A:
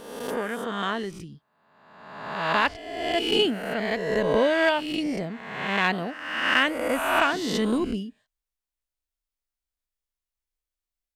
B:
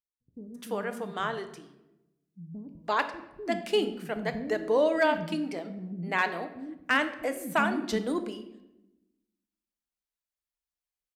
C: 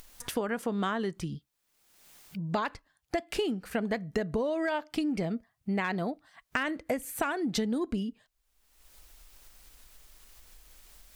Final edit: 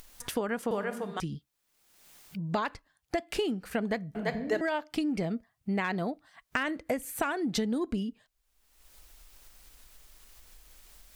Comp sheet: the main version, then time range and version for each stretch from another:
C
0:00.71–0:01.20: punch in from B
0:04.15–0:04.61: punch in from B
not used: A

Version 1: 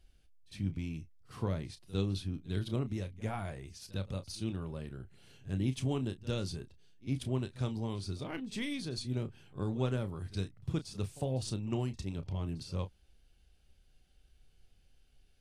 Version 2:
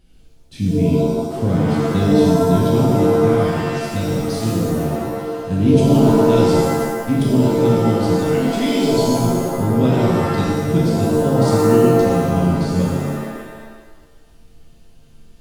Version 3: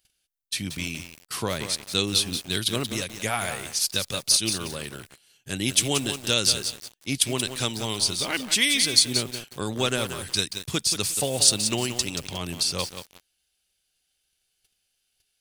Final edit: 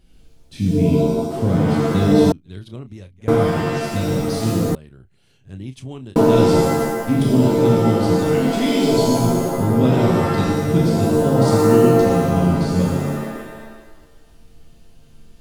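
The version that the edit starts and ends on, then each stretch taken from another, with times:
2
0:02.32–0:03.28: punch in from 1
0:04.75–0:06.16: punch in from 1
not used: 3

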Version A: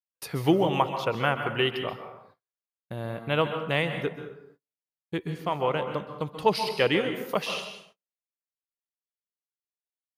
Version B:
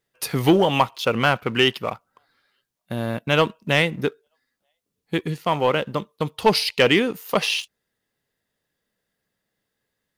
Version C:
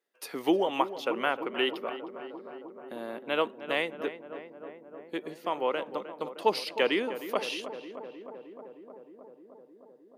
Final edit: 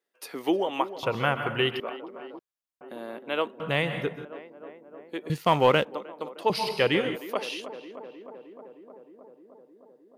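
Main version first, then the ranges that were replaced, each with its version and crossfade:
C
0:01.03–0:01.80: punch in from A
0:02.39–0:02.81: punch in from A
0:03.60–0:04.25: punch in from A
0:05.30–0:05.85: punch in from B
0:06.50–0:07.16: punch in from A

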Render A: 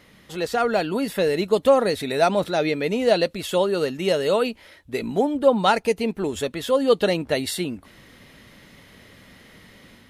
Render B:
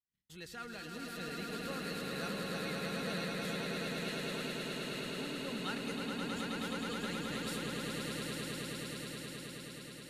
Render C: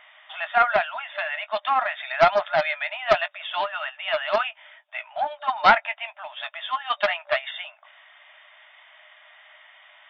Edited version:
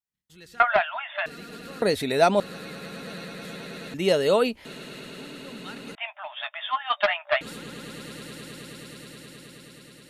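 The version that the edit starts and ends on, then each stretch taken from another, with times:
B
0:00.60–0:01.26: punch in from C
0:01.82–0:02.40: punch in from A
0:03.94–0:04.65: punch in from A
0:05.95–0:07.41: punch in from C

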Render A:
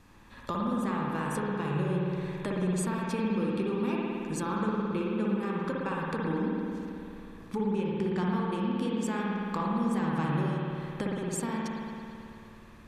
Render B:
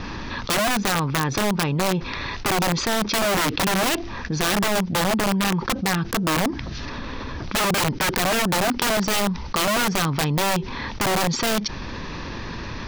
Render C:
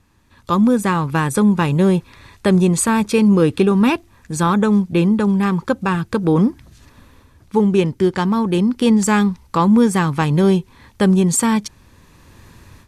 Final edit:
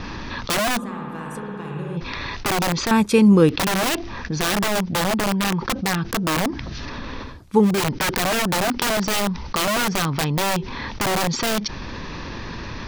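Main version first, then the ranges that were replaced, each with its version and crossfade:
B
0:00.78–0:01.97: punch in from A
0:02.91–0:03.49: punch in from C
0:07.31–0:07.74: punch in from C, crossfade 0.24 s

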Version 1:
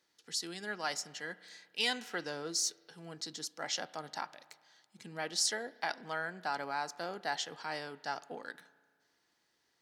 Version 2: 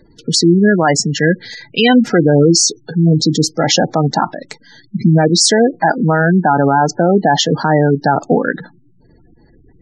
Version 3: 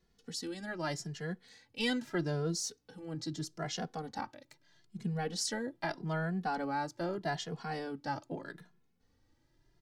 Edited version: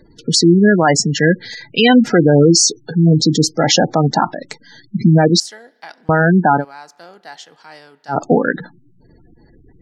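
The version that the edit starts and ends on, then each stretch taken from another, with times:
2
0:05.40–0:06.09: punch in from 1
0:06.60–0:08.13: punch in from 1, crossfade 0.10 s
not used: 3

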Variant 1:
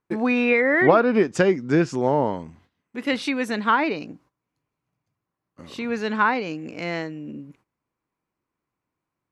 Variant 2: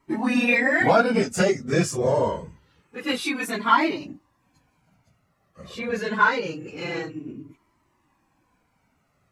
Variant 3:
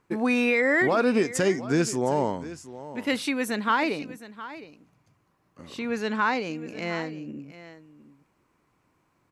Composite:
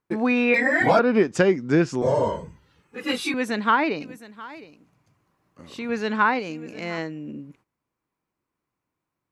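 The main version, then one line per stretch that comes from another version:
1
0:00.54–0:00.99: punch in from 2
0:02.02–0:03.34: punch in from 2
0:04.01–0:05.89: punch in from 3
0:06.39–0:06.98: punch in from 3

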